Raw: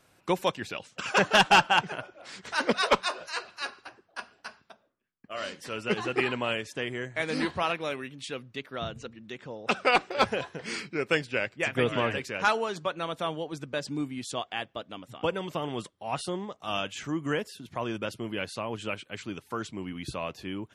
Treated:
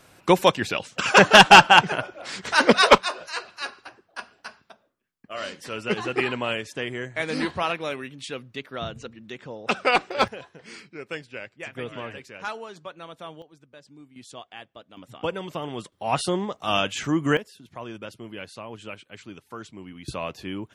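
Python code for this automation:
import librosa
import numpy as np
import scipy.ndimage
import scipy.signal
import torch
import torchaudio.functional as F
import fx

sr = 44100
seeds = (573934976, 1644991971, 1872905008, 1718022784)

y = fx.gain(x, sr, db=fx.steps((0.0, 9.5), (2.98, 2.5), (10.28, -8.0), (13.42, -16.5), (14.16, -8.0), (14.97, 0.5), (15.92, 8.0), (17.37, -4.5), (20.08, 3.0)))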